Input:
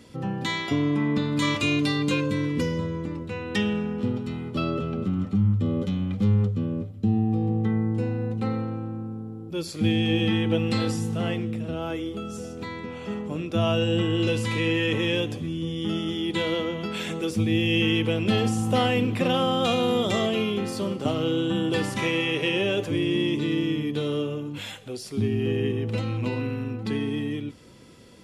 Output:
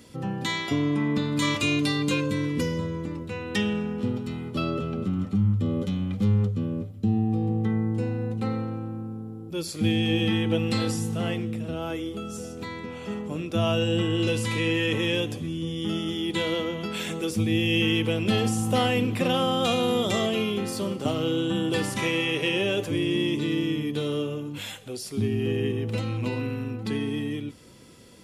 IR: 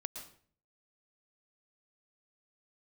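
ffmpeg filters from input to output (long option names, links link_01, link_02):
-af "highshelf=frequency=7700:gain=9,volume=-1dB"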